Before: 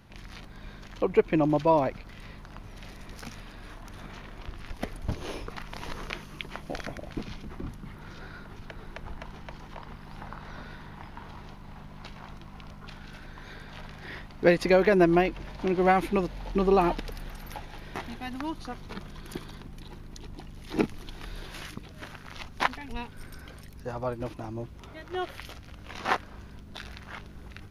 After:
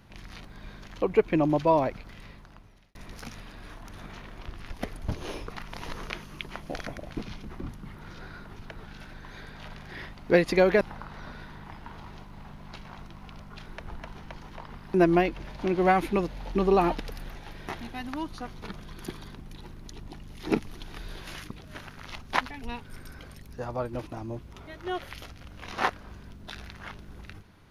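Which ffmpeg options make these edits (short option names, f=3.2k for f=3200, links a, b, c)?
-filter_complex "[0:a]asplit=7[a][b][c][d][e][f][g];[a]atrim=end=2.95,asetpts=PTS-STARTPTS,afade=t=out:st=2.08:d=0.87[h];[b]atrim=start=2.95:end=8.842,asetpts=PTS-STARTPTS,afade=t=in:d=0.004:c=hsin[i];[c]atrim=start=12.968:end=14.942[j];[d]atrim=start=10.118:end=12.972[k];[e]atrim=start=8.838:end=10.122[l];[f]atrim=start=14.938:end=17.352[m];[g]atrim=start=17.618[n];[h][i]concat=n=2:v=0:a=1[o];[o][j]acrossfade=d=0.004:c1=hsin:c2=hsin[p];[p][k]acrossfade=d=0.004:c1=hsin:c2=hsin[q];[q][l]acrossfade=d=0.004:c1=hsin:c2=hsin[r];[r][m]acrossfade=d=0.004:c1=hsin:c2=hsin[s];[s][n]acrossfade=d=0.004:c1=hsin:c2=hsin"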